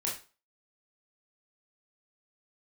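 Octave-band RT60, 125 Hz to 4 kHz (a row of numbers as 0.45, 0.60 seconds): 0.30, 0.30, 0.35, 0.35, 0.30, 0.30 seconds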